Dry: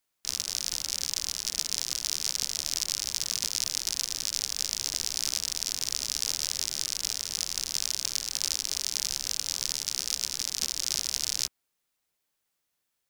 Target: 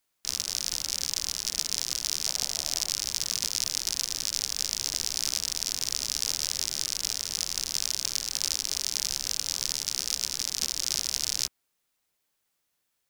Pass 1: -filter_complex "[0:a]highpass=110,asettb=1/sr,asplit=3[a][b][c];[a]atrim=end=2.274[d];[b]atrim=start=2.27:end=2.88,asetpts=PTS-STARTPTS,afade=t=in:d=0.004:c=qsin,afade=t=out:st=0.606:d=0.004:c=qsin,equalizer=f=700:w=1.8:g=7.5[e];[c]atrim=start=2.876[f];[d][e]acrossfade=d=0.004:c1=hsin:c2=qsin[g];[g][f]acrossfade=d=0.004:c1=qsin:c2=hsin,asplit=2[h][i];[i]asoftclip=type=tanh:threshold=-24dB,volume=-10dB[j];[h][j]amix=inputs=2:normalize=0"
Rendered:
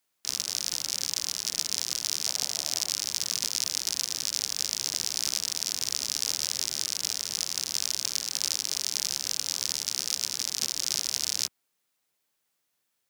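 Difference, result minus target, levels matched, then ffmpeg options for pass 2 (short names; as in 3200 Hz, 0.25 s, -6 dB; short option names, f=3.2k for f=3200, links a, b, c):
125 Hz band -3.0 dB
-filter_complex "[0:a]asettb=1/sr,asplit=3[a][b][c];[a]atrim=end=2.274[d];[b]atrim=start=2.27:end=2.88,asetpts=PTS-STARTPTS,afade=t=in:d=0.004:c=qsin,afade=t=out:st=0.606:d=0.004:c=qsin,equalizer=f=700:w=1.8:g=7.5[e];[c]atrim=start=2.876[f];[d][e]acrossfade=d=0.004:c1=hsin:c2=qsin[g];[g][f]acrossfade=d=0.004:c1=qsin:c2=hsin,asplit=2[h][i];[i]asoftclip=type=tanh:threshold=-24dB,volume=-10dB[j];[h][j]amix=inputs=2:normalize=0"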